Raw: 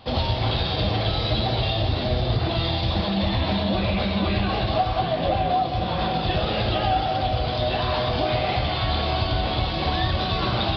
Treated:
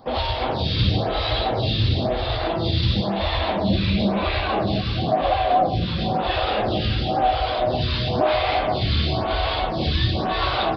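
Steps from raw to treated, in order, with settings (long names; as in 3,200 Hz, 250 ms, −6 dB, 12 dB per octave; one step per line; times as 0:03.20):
single-tap delay 332 ms −5 dB
phaser with staggered stages 0.98 Hz
level +4 dB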